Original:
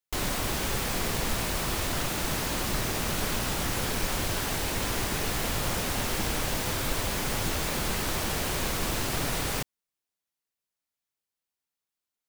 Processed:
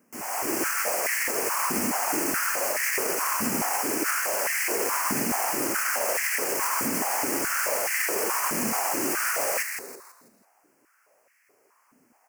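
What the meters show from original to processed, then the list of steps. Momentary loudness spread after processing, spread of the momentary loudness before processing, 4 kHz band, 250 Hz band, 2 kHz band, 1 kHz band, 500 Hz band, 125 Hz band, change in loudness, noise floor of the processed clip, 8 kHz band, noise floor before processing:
1 LU, 0 LU, −4.0 dB, +1.5 dB, +5.5 dB, +5.0 dB, +4.0 dB, −13.0 dB, +4.0 dB, −65 dBFS, +6.0 dB, below −85 dBFS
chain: fade in at the beginning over 0.92 s
brickwall limiter −26 dBFS, peak gain reduction 9.5 dB
high-shelf EQ 2,700 Hz +7 dB
background noise pink −70 dBFS
Butterworth band-reject 3,700 Hz, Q 1.3
on a send: echo with shifted repeats 164 ms, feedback 40%, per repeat −140 Hz, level −6 dB
on the sum: high-pass on a step sequencer 4.7 Hz 230–1,900 Hz
level +4.5 dB

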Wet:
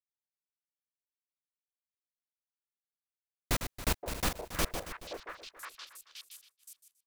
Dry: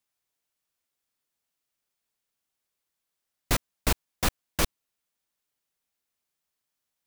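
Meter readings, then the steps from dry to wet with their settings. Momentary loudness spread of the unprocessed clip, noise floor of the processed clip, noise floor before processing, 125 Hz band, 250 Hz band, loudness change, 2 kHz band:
2 LU, below −85 dBFS, −84 dBFS, −5.0 dB, −4.5 dB, −6.5 dB, −4.0 dB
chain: feedback delay that plays each chunk backwards 138 ms, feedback 53%, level −8.5 dB
echo through a band-pass that steps 521 ms, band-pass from 550 Hz, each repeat 1.4 octaves, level −2.5 dB
downward expander −51 dBFS
level −5.5 dB

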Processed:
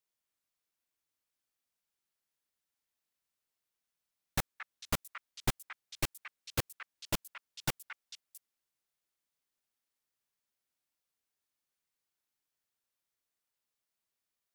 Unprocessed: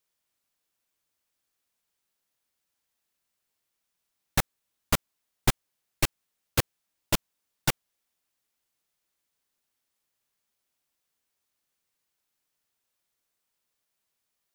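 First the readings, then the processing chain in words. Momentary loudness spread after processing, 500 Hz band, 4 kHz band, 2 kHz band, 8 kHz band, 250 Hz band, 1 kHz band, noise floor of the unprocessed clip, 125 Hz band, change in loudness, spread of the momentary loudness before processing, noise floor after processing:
13 LU, −8.0 dB, −7.5 dB, −7.0 dB, −7.5 dB, −8.0 dB, −7.5 dB, −82 dBFS, −8.0 dB, −8.5 dB, 9 LU, below −85 dBFS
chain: echo through a band-pass that steps 224 ms, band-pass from 1,700 Hz, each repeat 1.4 octaves, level −5.5 dB
level −8 dB

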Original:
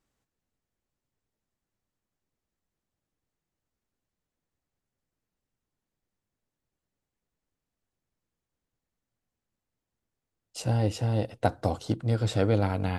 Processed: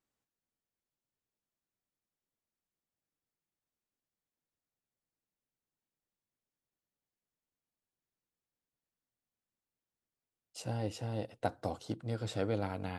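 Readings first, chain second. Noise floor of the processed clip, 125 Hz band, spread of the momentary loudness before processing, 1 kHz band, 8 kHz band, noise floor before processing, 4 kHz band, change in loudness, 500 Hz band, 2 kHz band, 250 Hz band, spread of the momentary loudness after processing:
below −85 dBFS, −12.5 dB, 6 LU, −8.0 dB, −8.0 dB, below −85 dBFS, −8.0 dB, −10.0 dB, −8.5 dB, −8.0 dB, −9.5 dB, 6 LU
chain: low-shelf EQ 87 Hz −11.5 dB
level −8 dB

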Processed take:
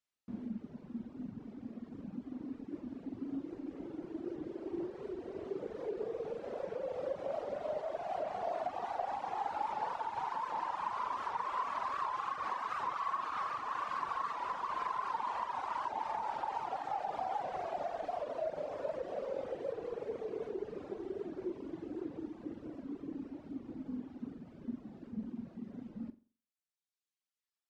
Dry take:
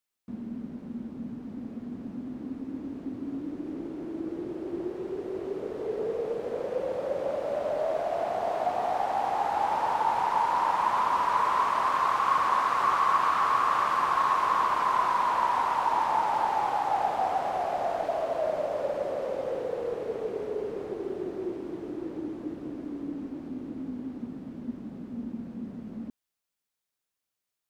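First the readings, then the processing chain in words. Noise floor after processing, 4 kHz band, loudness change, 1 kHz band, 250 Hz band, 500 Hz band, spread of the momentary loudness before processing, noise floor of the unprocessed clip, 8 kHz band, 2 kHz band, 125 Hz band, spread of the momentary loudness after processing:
below −85 dBFS, −11.5 dB, −11.0 dB, −11.5 dB, −7.0 dB, −9.0 dB, 14 LU, below −85 dBFS, can't be measured, −11.5 dB, −7.5 dB, 9 LU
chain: downward compressor, threshold −27 dBFS, peak gain reduction 8 dB
low-pass filter 7,100 Hz 12 dB per octave
on a send: flutter between parallel walls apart 7.5 metres, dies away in 0.42 s
on the sum: reverb reduction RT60 1.9 s
wow of a warped record 78 rpm, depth 160 cents
level −4.5 dB

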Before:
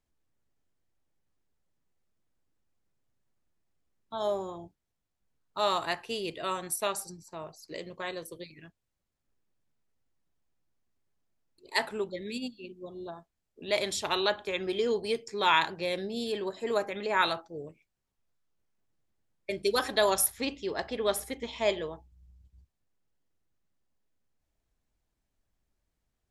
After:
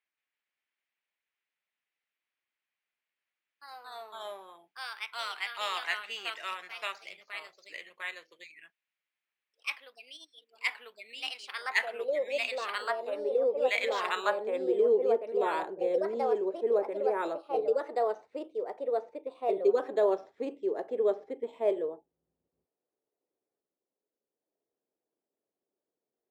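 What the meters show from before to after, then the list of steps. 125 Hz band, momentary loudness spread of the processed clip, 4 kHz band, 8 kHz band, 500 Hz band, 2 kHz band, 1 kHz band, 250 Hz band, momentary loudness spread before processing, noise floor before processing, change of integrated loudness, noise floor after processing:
below −15 dB, 18 LU, −5.0 dB, below −15 dB, +3.5 dB, 0.0 dB, −2.5 dB, −2.5 dB, 18 LU, −83 dBFS, −0.5 dB, below −85 dBFS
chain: Bessel high-pass filter 260 Hz, order 2
bad sample-rate conversion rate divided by 4×, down filtered, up hold
band-pass filter sweep 2,200 Hz → 430 Hz, 0:14.03–0:14.66
delay with pitch and tempo change per echo 172 ms, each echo +2 semitones, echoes 2
level +6 dB

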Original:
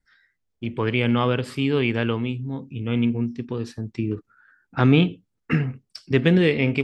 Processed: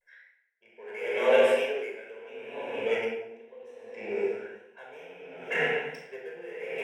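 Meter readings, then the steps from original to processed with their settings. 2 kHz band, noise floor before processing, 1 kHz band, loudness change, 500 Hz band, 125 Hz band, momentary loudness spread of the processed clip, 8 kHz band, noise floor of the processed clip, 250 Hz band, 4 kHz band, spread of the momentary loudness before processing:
−3.5 dB, −76 dBFS, −5.5 dB, −5.5 dB, −1.5 dB, below −30 dB, 23 LU, can't be measured, −65 dBFS, −22.5 dB, −9.0 dB, 14 LU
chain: mid-hump overdrive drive 25 dB, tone 3,500 Hz, clips at −4.5 dBFS
four-pole ladder high-pass 350 Hz, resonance 55%
phaser with its sweep stopped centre 1,200 Hz, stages 6
on a send: feedback delay with all-pass diffusion 515 ms, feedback 59%, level −16 dB
on the sum: pitch vibrato 0.91 Hz 82 cents
rectangular room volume 2,200 cubic metres, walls mixed, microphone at 5.4 metres
tremolo with a sine in dB 0.7 Hz, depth 24 dB
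level −4 dB

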